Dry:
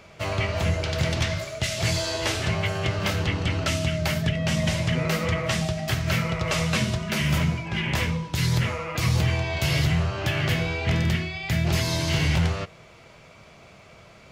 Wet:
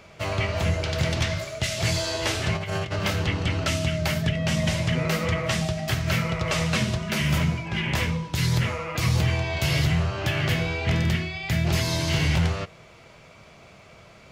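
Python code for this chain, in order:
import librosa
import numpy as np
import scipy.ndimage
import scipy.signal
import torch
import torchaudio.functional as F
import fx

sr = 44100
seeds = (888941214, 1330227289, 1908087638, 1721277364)

y = fx.over_compress(x, sr, threshold_db=-28.0, ratio=-0.5, at=(2.55, 2.96))
y = fx.doppler_dist(y, sr, depth_ms=0.13, at=(6.42, 7.04))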